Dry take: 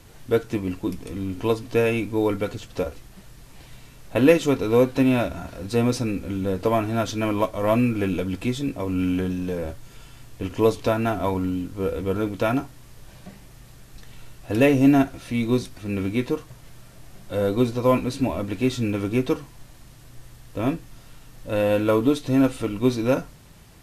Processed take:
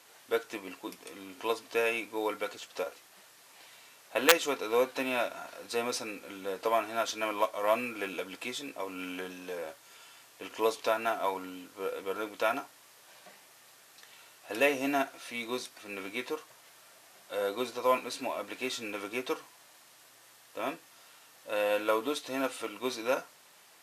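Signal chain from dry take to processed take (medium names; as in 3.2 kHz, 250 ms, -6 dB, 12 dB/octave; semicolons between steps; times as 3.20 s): integer overflow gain 4.5 dB; high-pass 660 Hz 12 dB/octave; trim -2.5 dB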